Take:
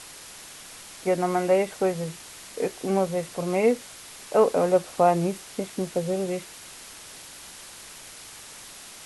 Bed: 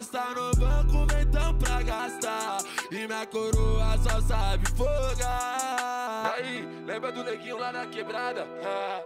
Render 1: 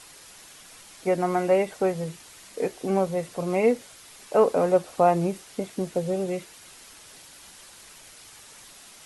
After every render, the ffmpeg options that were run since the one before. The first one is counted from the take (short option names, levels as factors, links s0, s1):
-af "afftdn=nr=6:nf=-44"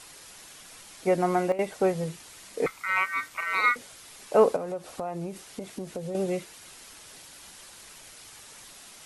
-filter_complex "[0:a]asettb=1/sr,asplit=3[s0][s1][s2];[s0]atrim=end=2.664[s3];[s1]atrim=start=2.66:end=3.76,asetpts=PTS-STARTPTS,afade=t=in:d=0.004:c=qsin,afade=t=out:st=1.096:d=0.004:c=qsin,aeval=exprs='val(0)*sin(2*PI*1700*n/s)':c=same[s4];[s2]atrim=start=3.756[s5];[s3][s4]acrossfade=d=0.004:c1=hsin:c2=qsin[s6];[s6][s5]acrossfade=d=0.004:c1=qsin:c2=hsin,asettb=1/sr,asplit=3[s7][s8][s9];[s7]atrim=end=4.564[s10];[s8]atrim=start=4.56:end=6.15,asetpts=PTS-STARTPTS,afade=t=in:d=0.004:c=qsin,afade=t=out:st=1.586:d=0.004:c=qsin,acompressor=threshold=0.0251:ratio=4:attack=3.2:release=140:knee=1:detection=peak[s11];[s9]atrim=start=6.146[s12];[s10][s11]acrossfade=d=0.004:c1=hsin:c2=qsin[s13];[s13][s12]acrossfade=d=0.004:c1=qsin:c2=hsin,asplit=3[s14][s15][s16];[s14]atrim=end=1.52,asetpts=PTS-STARTPTS,afade=t=out:st=1.26:d=0.26:c=log:silence=0.16788[s17];[s15]atrim=start=1.52:end=1.59,asetpts=PTS-STARTPTS,volume=0.168[s18];[s16]atrim=start=1.59,asetpts=PTS-STARTPTS,afade=t=in:d=0.26:c=log:silence=0.16788[s19];[s17][s18][s19]concat=n=3:v=0:a=1"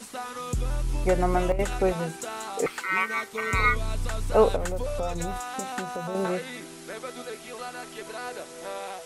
-filter_complex "[1:a]volume=0.562[s0];[0:a][s0]amix=inputs=2:normalize=0"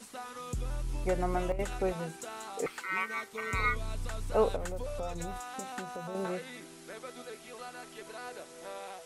-af "volume=0.422"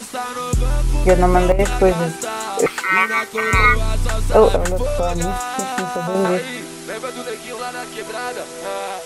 -af "acontrast=78,alimiter=level_in=3.35:limit=0.891:release=50:level=0:latency=1"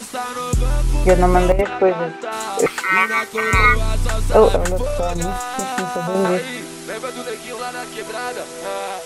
-filter_complex "[0:a]asplit=3[s0][s1][s2];[s0]afade=t=out:st=1.6:d=0.02[s3];[s1]highpass=270,lowpass=2600,afade=t=in:st=1.6:d=0.02,afade=t=out:st=2.31:d=0.02[s4];[s2]afade=t=in:st=2.31:d=0.02[s5];[s3][s4][s5]amix=inputs=3:normalize=0,asettb=1/sr,asplit=3[s6][s7][s8];[s6]atrim=end=4.814[s9];[s7]atrim=start=4.81:end=5.61,asetpts=PTS-STARTPTS,afade=t=in:d=0.004:c=qsin,afade=t=out:st=0.796:d=0.004:c=qsin,aeval=exprs='if(lt(val(0),0),0.708*val(0),val(0))':c=same[s10];[s8]atrim=start=5.606[s11];[s9][s10]acrossfade=d=0.004:c1=hsin:c2=qsin[s12];[s12][s11]acrossfade=d=0.004:c1=qsin:c2=hsin"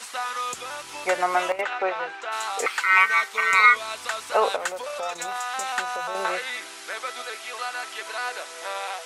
-af "highpass=980,highshelf=f=7900:g=-11"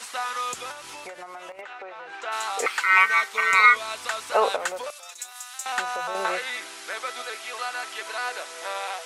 -filter_complex "[0:a]asettb=1/sr,asplit=3[s0][s1][s2];[s0]atrim=end=0.714[s3];[s1]atrim=start=0.71:end=2.13,asetpts=PTS-STARTPTS,afade=t=in:d=0.004:c=qsin,afade=t=out:st=1.416:d=0.004:c=qsin,acompressor=threshold=0.0178:ratio=16:attack=3.2:release=140:knee=1:detection=peak[s4];[s2]atrim=start=2.126[s5];[s3][s4]acrossfade=d=0.004:c1=hsin:c2=qsin[s6];[s6][s5]acrossfade=d=0.004:c1=qsin:c2=hsin,asettb=1/sr,asplit=3[s7][s8][s9];[s7]atrim=end=4.904[s10];[s8]atrim=start=4.9:end=5.66,asetpts=PTS-STARTPTS,afade=t=in:d=0.004:c=qsin,afade=t=out:st=0.756:d=0.004:c=qsin,aderivative[s11];[s9]atrim=start=5.656[s12];[s10][s11]acrossfade=d=0.004:c1=hsin:c2=qsin[s13];[s13][s12]acrossfade=d=0.004:c1=qsin:c2=hsin"